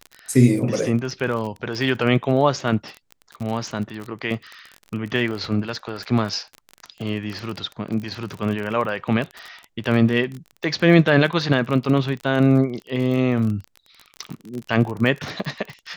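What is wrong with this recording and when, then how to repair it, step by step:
crackle 30 per s -27 dBFS
5.31 s: dropout 4 ms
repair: de-click; interpolate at 5.31 s, 4 ms

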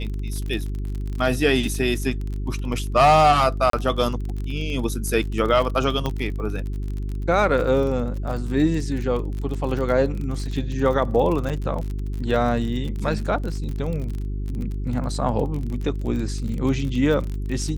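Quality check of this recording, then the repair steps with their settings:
crackle 36 per s -28 dBFS
hum 50 Hz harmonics 8 -27 dBFS
3.70–3.73 s: dropout 33 ms
6.06 s: pop -12 dBFS
11.49–11.50 s: dropout 7.1 ms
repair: de-click; de-hum 50 Hz, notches 8; interpolate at 3.70 s, 33 ms; interpolate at 11.49 s, 7.1 ms

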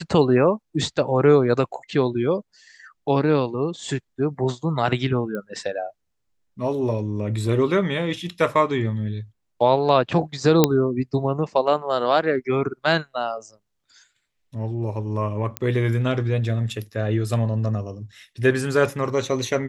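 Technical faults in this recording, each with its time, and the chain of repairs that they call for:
5.35 s: pop -19 dBFS
10.64 s: pop 0 dBFS
15.57 s: pop -9 dBFS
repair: de-click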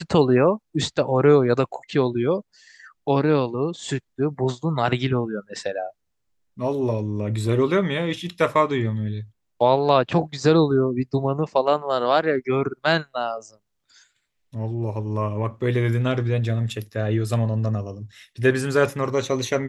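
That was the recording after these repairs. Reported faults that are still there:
nothing left

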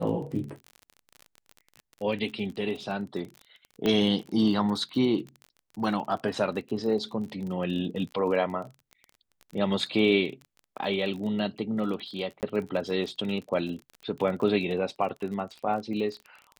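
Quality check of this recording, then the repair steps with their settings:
crackle 29 per s -35 dBFS
3.86 s: pop -14 dBFS
12.41–12.43 s: dropout 18 ms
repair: de-click; interpolate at 12.41 s, 18 ms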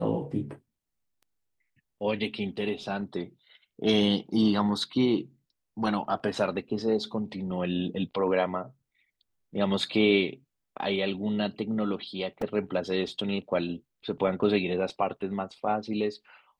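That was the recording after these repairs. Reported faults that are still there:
3.86 s: pop

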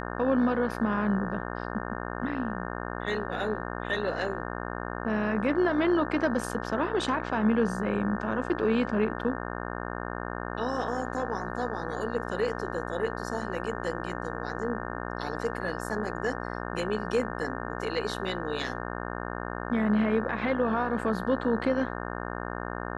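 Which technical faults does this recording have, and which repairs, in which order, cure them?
buzz 60 Hz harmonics 30 -35 dBFS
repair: de-hum 60 Hz, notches 30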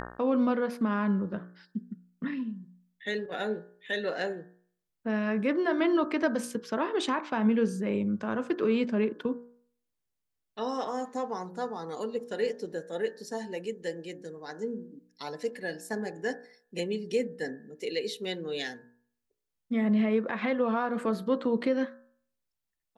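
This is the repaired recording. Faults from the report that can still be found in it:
nothing left

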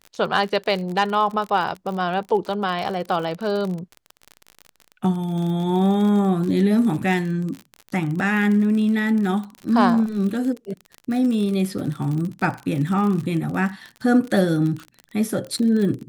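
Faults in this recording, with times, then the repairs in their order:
crackle 43 per s -27 dBFS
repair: de-click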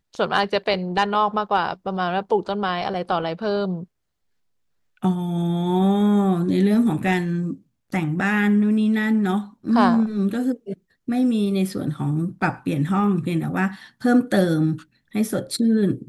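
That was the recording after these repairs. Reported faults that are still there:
nothing left

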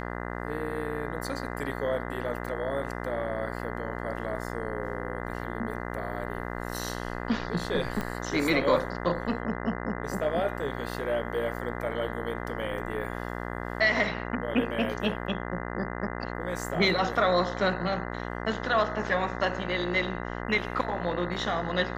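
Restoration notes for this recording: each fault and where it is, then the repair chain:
buzz 60 Hz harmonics 34 -35 dBFS
8.01 s: pop -18 dBFS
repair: de-click; de-hum 60 Hz, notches 34

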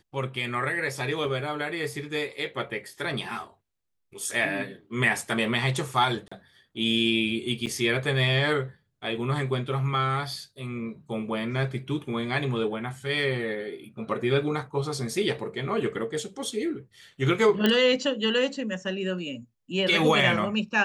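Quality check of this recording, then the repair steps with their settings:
6.28–6.32 s: dropout 35 ms
7.66–7.67 s: dropout 7.4 ms
17.66 s: pop -9 dBFS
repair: de-click; interpolate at 6.28 s, 35 ms; interpolate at 7.66 s, 7.4 ms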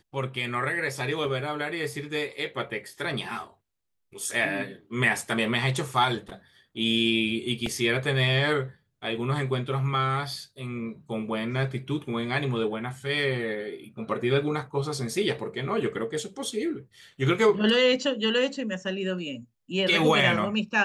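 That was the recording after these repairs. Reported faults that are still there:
nothing left

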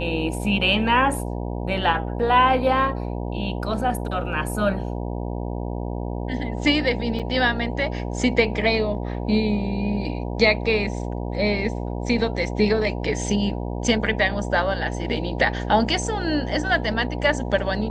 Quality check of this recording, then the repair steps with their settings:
buzz 60 Hz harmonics 16 -28 dBFS
7.19–7.20 s: dropout 6.1 ms
15.17 s: dropout 2.6 ms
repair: de-hum 60 Hz, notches 16; interpolate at 7.19 s, 6.1 ms; interpolate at 15.17 s, 2.6 ms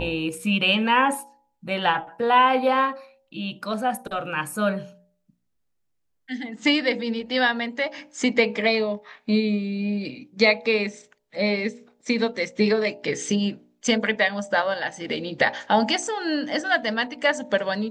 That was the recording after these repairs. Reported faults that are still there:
nothing left

